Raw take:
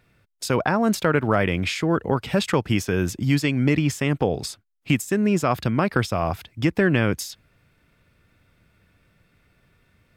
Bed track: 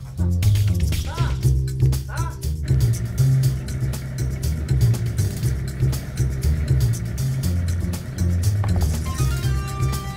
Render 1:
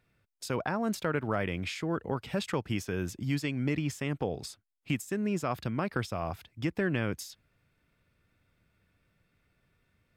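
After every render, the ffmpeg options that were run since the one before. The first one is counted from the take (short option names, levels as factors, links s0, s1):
-af "volume=0.299"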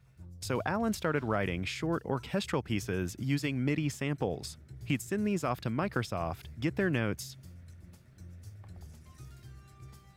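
-filter_complex "[1:a]volume=0.0376[s0];[0:a][s0]amix=inputs=2:normalize=0"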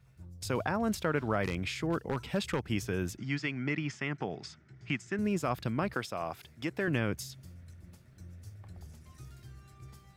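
-filter_complex "[0:a]asplit=3[s0][s1][s2];[s0]afade=t=out:st=1.43:d=0.02[s3];[s1]aeval=exprs='0.0794*(abs(mod(val(0)/0.0794+3,4)-2)-1)':c=same,afade=t=in:st=1.43:d=0.02,afade=t=out:st=2.67:d=0.02[s4];[s2]afade=t=in:st=2.67:d=0.02[s5];[s3][s4][s5]amix=inputs=3:normalize=0,asettb=1/sr,asplit=3[s6][s7][s8];[s6]atrim=end=3.174[s9];[s7]atrim=start=3.17:end=5.19,asetpts=PTS-STARTPTS,afade=t=in:d=0.004:c=qsin,afade=t=out:st=2.016:d=0.004:c=qsin,highpass=160,equalizer=f=270:t=q:w=4:g=-4,equalizer=f=510:t=q:w=4:g=-10,equalizer=f=1400:t=q:w=4:g=5,equalizer=f=2000:t=q:w=4:g=5,equalizer=f=4000:t=q:w=4:g=-6,lowpass=f=6000:w=0.5412,lowpass=f=6000:w=1.3066[s10];[s8]atrim=start=5.186[s11];[s9][s10]acrossfade=d=0.004:c1=hsin:c2=qsin[s12];[s12][s11]acrossfade=d=0.004:c1=qsin:c2=hsin,asettb=1/sr,asplit=3[s13][s14][s15];[s13]atrim=end=5.944[s16];[s14]atrim=start=5.94:end=6.88,asetpts=PTS-STARTPTS,afade=t=in:d=0.004:c=qsin,afade=t=out:st=0.936:d=0.004:c=qsin,highpass=f=350:p=1[s17];[s15]atrim=start=6.876[s18];[s16][s17]acrossfade=d=0.004:c1=hsin:c2=qsin[s19];[s19][s18]acrossfade=d=0.004:c1=qsin:c2=hsin"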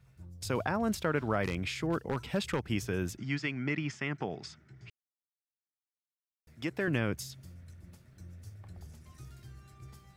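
-filter_complex "[0:a]asplit=3[s0][s1][s2];[s0]atrim=end=4.9,asetpts=PTS-STARTPTS,afade=t=out:st=4.896:d=0.004:c=hsin[s3];[s1]atrim=start=4.9:end=6.47,asetpts=PTS-STARTPTS,volume=0[s4];[s2]atrim=start=6.47,asetpts=PTS-STARTPTS,afade=t=in:d=0.004:c=hsin[s5];[s3][s4][s5]concat=n=3:v=0:a=1"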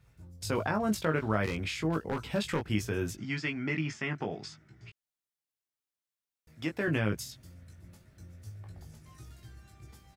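-filter_complex "[0:a]asplit=2[s0][s1];[s1]adelay=19,volume=0.596[s2];[s0][s2]amix=inputs=2:normalize=0"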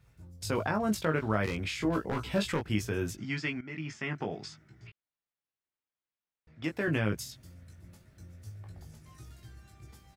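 -filter_complex "[0:a]asettb=1/sr,asplit=3[s0][s1][s2];[s0]atrim=end=1.794[s3];[s1]atrim=start=1.79:end=2.52,asetpts=PTS-STARTPTS,afade=t=in:d=0.004:c=qsin,afade=t=out:st=0.726:d=0.004:c=qsin,asplit=2[s4][s5];[s5]adelay=16,volume=0.708[s6];[s4][s6]amix=inputs=2:normalize=0,atrim=end_sample=32193[s7];[s2]atrim=start=2.516[s8];[s3][s7]acrossfade=d=0.004:c1=hsin:c2=qsin[s9];[s9][s8]acrossfade=d=0.004:c1=qsin:c2=hsin,asettb=1/sr,asplit=3[s10][s11][s12];[s10]atrim=end=4.874[s13];[s11]atrim=start=4.87:end=6.64,asetpts=PTS-STARTPTS,afade=t=in:d=0.004:c=qsin,afade=t=out:st=1.766:d=0.004:c=qsin,lowpass=3000[s14];[s12]atrim=start=6.636[s15];[s13][s14]acrossfade=d=0.004:c1=hsin:c2=qsin[s16];[s16][s15]acrossfade=d=0.004:c1=qsin:c2=hsin,asplit=2[s17][s18];[s17]atrim=end=3.61,asetpts=PTS-STARTPTS,afade=t=out:st=3.606:d=0.004:c=hsin:silence=0.141254[s19];[s18]atrim=start=3.61,asetpts=PTS-STARTPTS,afade=t=in:d=0.71:c=qsin:silence=0.141254[s20];[s19][s20]concat=n=2:v=0:a=1"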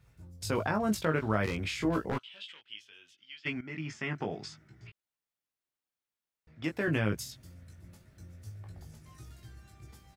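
-filter_complex "[0:a]asplit=3[s0][s1][s2];[s0]afade=t=out:st=2.17:d=0.02[s3];[s1]bandpass=f=3100:t=q:w=6.7,afade=t=in:st=2.17:d=0.02,afade=t=out:st=3.45:d=0.02[s4];[s2]afade=t=in:st=3.45:d=0.02[s5];[s3][s4][s5]amix=inputs=3:normalize=0"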